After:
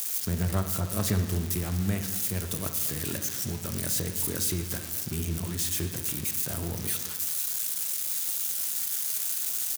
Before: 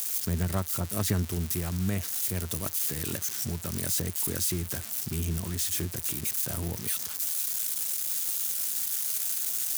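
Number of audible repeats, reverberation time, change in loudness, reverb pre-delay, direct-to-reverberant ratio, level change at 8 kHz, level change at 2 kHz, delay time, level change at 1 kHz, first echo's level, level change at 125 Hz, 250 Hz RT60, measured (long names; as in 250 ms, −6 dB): 1, 1.5 s, +0.5 dB, 20 ms, 5.5 dB, 0.0 dB, +1.0 dB, 230 ms, +1.0 dB, −18.0 dB, +1.0 dB, 1.5 s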